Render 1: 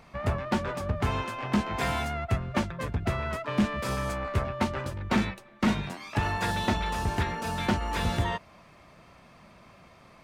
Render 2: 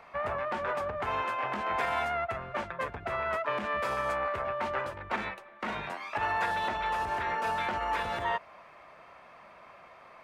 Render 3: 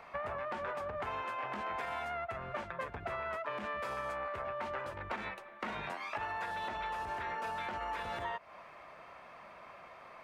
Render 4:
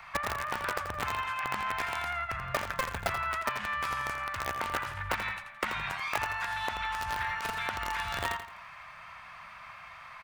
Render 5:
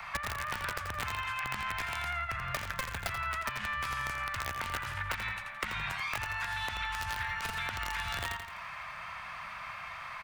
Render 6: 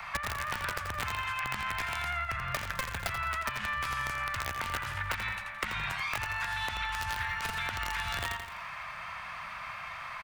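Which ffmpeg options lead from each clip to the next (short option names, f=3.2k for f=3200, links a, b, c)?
-filter_complex "[0:a]alimiter=limit=-22.5dB:level=0:latency=1:release=61,acrossover=split=460 2600:gain=0.126 1 0.2[a][b][c];[a][b][c]amix=inputs=3:normalize=0,volume=5dB"
-af "acompressor=threshold=-36dB:ratio=6"
-filter_complex "[0:a]acrossover=split=160|930|2400[a][b][c][d];[b]acrusher=bits=5:mix=0:aa=0.000001[e];[a][e][c][d]amix=inputs=4:normalize=0,aecho=1:1:84|168|252|336:0.355|0.124|0.0435|0.0152,volume=8.5dB"
-filter_complex "[0:a]acrossover=split=160|1400[a][b][c];[a]acompressor=threshold=-47dB:ratio=4[d];[b]acompressor=threshold=-49dB:ratio=4[e];[c]acompressor=threshold=-41dB:ratio=4[f];[d][e][f]amix=inputs=3:normalize=0,volume=5.5dB"
-af "aecho=1:1:208:0.112,volume=1.5dB"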